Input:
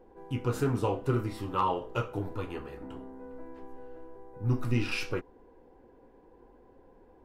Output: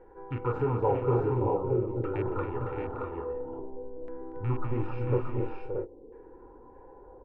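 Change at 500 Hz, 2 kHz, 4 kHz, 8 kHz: +6.0 dB, -6.5 dB, under -15 dB, under -30 dB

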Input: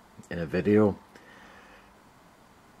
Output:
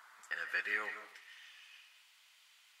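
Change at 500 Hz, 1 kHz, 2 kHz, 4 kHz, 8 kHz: -27.0 dB, -8.5 dB, +4.0 dB, 0.0 dB, n/a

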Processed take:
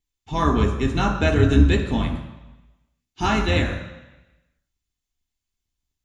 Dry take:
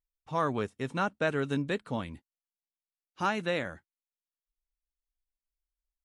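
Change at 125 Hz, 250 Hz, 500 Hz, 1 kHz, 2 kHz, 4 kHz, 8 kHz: +17.0, +13.0, +7.5, +7.5, +7.5, +12.0, +12.5 dB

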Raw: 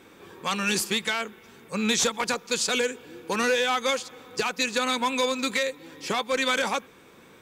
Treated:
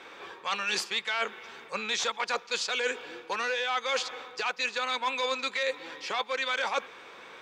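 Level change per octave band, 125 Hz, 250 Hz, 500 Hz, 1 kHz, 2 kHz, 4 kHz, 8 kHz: under -15 dB, -16.5 dB, -6.0 dB, -3.0 dB, -2.5 dB, -3.5 dB, -9.5 dB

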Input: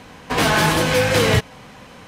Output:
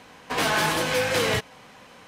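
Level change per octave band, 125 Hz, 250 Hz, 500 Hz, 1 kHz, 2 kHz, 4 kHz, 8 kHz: -12.5, -9.5, -6.5, -5.5, -5.0, -5.0, -5.0 dB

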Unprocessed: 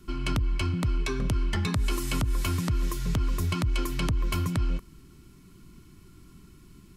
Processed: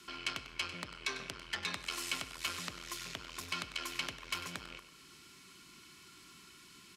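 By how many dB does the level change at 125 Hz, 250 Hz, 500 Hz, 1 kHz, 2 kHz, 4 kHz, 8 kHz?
-27.0, -19.5, -14.0, -7.0, -2.0, -1.0, -4.0 dB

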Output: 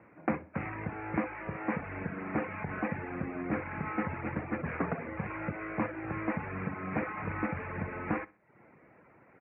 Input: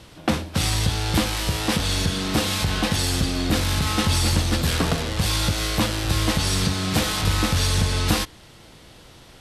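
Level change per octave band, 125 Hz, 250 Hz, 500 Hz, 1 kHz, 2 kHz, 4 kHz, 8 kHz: -17.0 dB, -9.5 dB, -8.5 dB, -8.5 dB, -10.0 dB, under -40 dB, under -40 dB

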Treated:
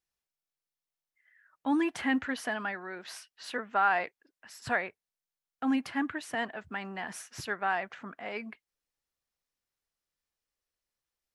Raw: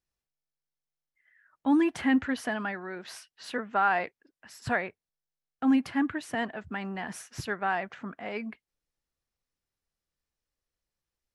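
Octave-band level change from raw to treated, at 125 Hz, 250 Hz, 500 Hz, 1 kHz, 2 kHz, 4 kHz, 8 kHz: -7.0, -5.0, -2.5, -1.0, -0.5, 0.0, 0.0 dB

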